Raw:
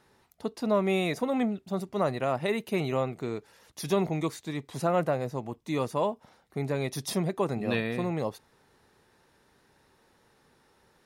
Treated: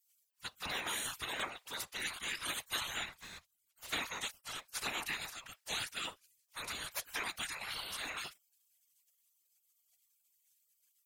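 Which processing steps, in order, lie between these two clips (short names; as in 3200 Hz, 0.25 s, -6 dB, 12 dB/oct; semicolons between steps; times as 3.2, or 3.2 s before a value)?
spectral gate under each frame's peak -30 dB weak; 3.09–3.93 tube stage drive 56 dB, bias 0.75; whisperiser; gain +11.5 dB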